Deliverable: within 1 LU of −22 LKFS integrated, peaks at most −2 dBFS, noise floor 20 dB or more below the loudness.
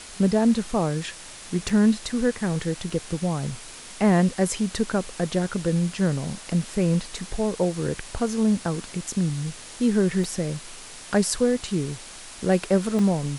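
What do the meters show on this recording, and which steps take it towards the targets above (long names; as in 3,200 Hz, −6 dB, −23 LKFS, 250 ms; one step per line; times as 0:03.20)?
number of dropouts 4; longest dropout 2.4 ms; background noise floor −42 dBFS; target noise floor −45 dBFS; integrated loudness −24.5 LKFS; sample peak −7.5 dBFS; target loudness −22.0 LKFS
→ repair the gap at 0:01.69/0:02.90/0:10.24/0:12.99, 2.4 ms
noise reduction from a noise print 6 dB
level +2.5 dB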